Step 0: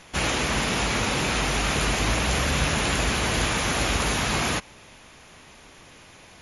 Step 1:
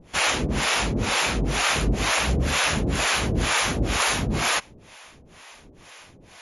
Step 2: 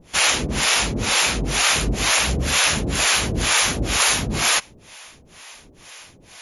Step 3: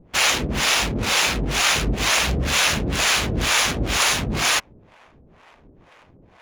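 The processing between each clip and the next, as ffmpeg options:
-filter_complex "[0:a]acrossover=split=510[a][b];[a]aeval=exprs='val(0)*(1-1/2+1/2*cos(2*PI*2.1*n/s))':c=same[c];[b]aeval=exprs='val(0)*(1-1/2-1/2*cos(2*PI*2.1*n/s))':c=same[d];[c][d]amix=inputs=2:normalize=0,volume=5.5dB"
-af "highshelf=f=2.7k:g=9"
-af "adynamicsmooth=sensitivity=5.5:basefreq=690"

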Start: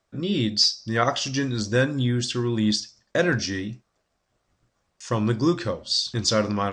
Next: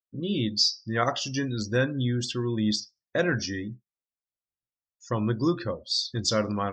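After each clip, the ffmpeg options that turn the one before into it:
-af "afftdn=nr=31:nf=-37,volume=-3.5dB"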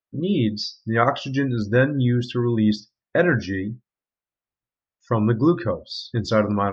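-af "lowpass=2.3k,volume=7dB"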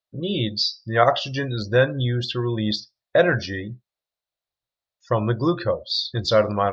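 -af "equalizer=f=250:t=o:w=0.67:g=-9,equalizer=f=630:t=o:w=0.67:g=7,equalizer=f=4k:t=o:w=0.67:g=12,volume=-1dB"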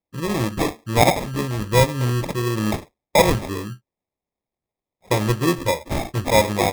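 -af "acrusher=samples=30:mix=1:aa=0.000001,volume=1.5dB"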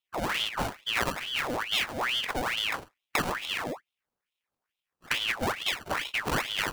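-af "acompressor=threshold=-28dB:ratio=4,aeval=exprs='val(0)*sin(2*PI*1800*n/s+1800*0.8/2.3*sin(2*PI*2.3*n/s))':c=same,volume=2.5dB"

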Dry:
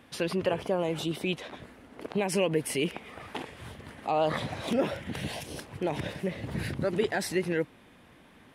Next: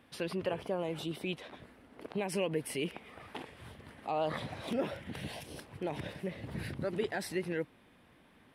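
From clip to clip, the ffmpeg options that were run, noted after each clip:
-af "equalizer=f=6.7k:w=3.1:g=-5.5,volume=-6.5dB"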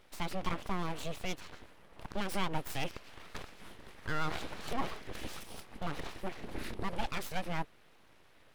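-af "aeval=exprs='abs(val(0))':c=same,volume=2dB"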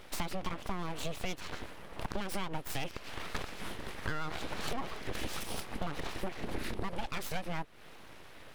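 -af "acompressor=threshold=-41dB:ratio=10,volume=10.5dB"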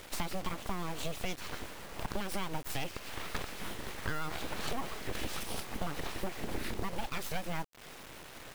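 -af "acrusher=bits=7:mix=0:aa=0.000001"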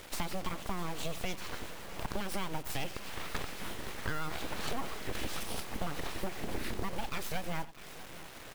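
-af "aecho=1:1:90|645:0.126|0.141"

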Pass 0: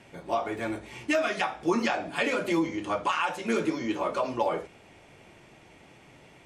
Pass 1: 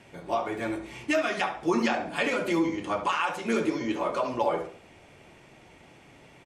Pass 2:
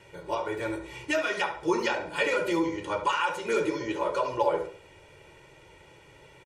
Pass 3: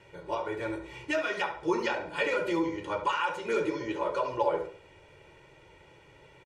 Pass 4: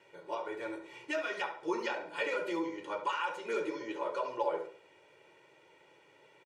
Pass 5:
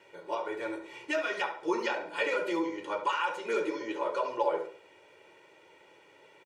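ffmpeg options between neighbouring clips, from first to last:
-filter_complex "[0:a]asplit=2[a][b];[b]adelay=70,lowpass=f=2.2k:p=1,volume=-8.5dB,asplit=2[c][d];[d]adelay=70,lowpass=f=2.2k:p=1,volume=0.36,asplit=2[e][f];[f]adelay=70,lowpass=f=2.2k:p=1,volume=0.36,asplit=2[g][h];[h]adelay=70,lowpass=f=2.2k:p=1,volume=0.36[i];[a][c][e][g][i]amix=inputs=5:normalize=0"
-af "aecho=1:1:2.1:0.79,volume=-2dB"
-af "highshelf=f=7.6k:g=-11.5,volume=-2dB"
-af "highpass=260,volume=-5dB"
-af "equalizer=f=140:w=5.3:g=-9.5,volume=4dB"

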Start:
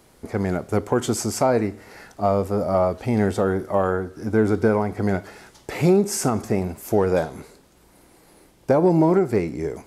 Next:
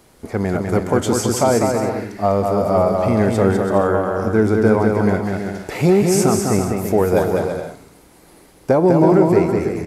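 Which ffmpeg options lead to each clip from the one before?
-af "aecho=1:1:200|330|414.5|469.4|505.1:0.631|0.398|0.251|0.158|0.1,volume=3dB"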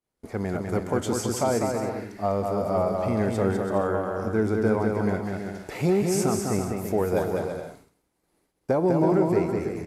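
-af "agate=range=-33dB:threshold=-36dB:ratio=3:detection=peak,volume=-8.5dB"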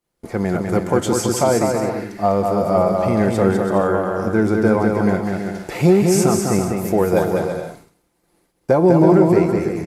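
-af "aecho=1:1:5.8:0.33,volume=7.5dB"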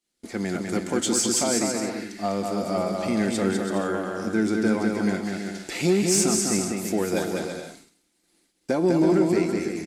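-filter_complex "[0:a]equalizer=f=125:t=o:w=1:g=-8,equalizer=f=250:t=o:w=1:g=9,equalizer=f=500:t=o:w=1:g=-6,equalizer=f=1k:t=o:w=1:g=-9,equalizer=f=4k:t=o:w=1:g=5,equalizer=f=8k:t=o:w=1:g=9,asplit=2[a][b];[b]highpass=f=720:p=1,volume=9dB,asoftclip=type=tanh:threshold=-1dB[c];[a][c]amix=inputs=2:normalize=0,lowpass=f=4.9k:p=1,volume=-6dB,volume=-6dB"

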